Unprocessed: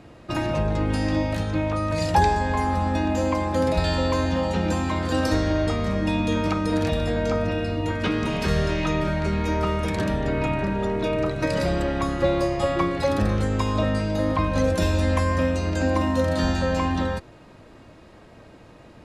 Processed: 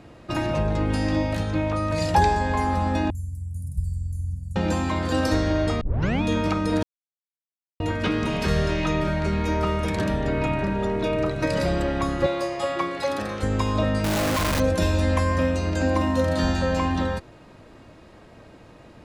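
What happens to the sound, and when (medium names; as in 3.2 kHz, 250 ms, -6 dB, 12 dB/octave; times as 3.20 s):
3.10–4.56 s: elliptic band-stop 120–9500 Hz, stop band 50 dB
5.81 s: tape start 0.41 s
6.83–7.80 s: mute
12.26–13.43 s: high-pass 540 Hz 6 dB/octave
14.04–14.60 s: one-bit comparator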